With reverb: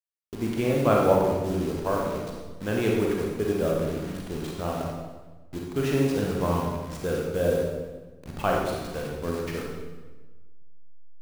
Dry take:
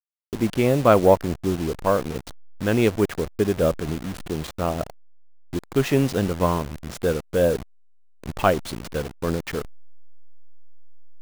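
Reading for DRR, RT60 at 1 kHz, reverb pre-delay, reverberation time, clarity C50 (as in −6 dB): −2.0 dB, 1.2 s, 28 ms, 1.3 s, 0.5 dB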